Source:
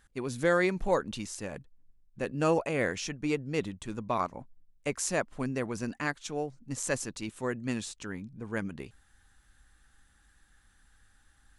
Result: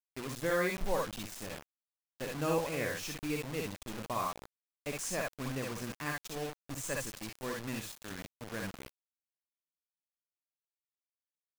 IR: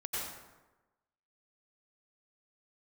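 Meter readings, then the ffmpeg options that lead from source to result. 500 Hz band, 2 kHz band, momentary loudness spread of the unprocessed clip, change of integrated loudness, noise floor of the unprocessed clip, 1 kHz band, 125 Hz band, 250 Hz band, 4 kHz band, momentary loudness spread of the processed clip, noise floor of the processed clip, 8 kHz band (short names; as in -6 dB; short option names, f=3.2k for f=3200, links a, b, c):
-5.5 dB, -4.0 dB, 13 LU, -4.5 dB, -65 dBFS, -4.0 dB, -4.5 dB, -6.5 dB, -1.0 dB, 12 LU, under -85 dBFS, -3.5 dB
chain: -filter_complex "[0:a]lowshelf=f=62:g=8[a];[1:a]atrim=start_sample=2205,atrim=end_sample=4410,asetrate=66150,aresample=44100[b];[a][b]afir=irnorm=-1:irlink=0,acrusher=bits=6:mix=0:aa=0.000001"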